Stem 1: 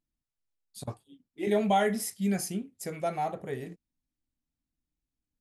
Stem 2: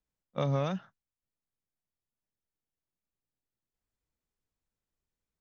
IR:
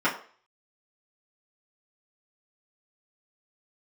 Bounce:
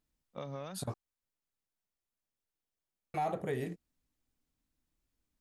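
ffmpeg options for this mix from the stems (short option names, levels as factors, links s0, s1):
-filter_complex "[0:a]aeval=exprs='0.2*sin(PI/2*1.78*val(0)/0.2)':c=same,volume=0.473,asplit=3[s0][s1][s2];[s0]atrim=end=0.94,asetpts=PTS-STARTPTS,afade=t=out:st=0.936:d=0.004:c=hsin[s3];[s1]atrim=start=0.94:end=3.14,asetpts=PTS-STARTPTS,volume=0[s4];[s2]atrim=start=3.14,asetpts=PTS-STARTPTS,afade=t=in:d=0.004:c=hsin[s5];[s3][s4][s5]concat=n=3:v=0:a=1[s6];[1:a]equalizer=f=120:t=o:w=1.4:g=-6,acompressor=threshold=0.00398:ratio=2,volume=1[s7];[s6][s7]amix=inputs=2:normalize=0,alimiter=level_in=1.26:limit=0.0631:level=0:latency=1:release=59,volume=0.794"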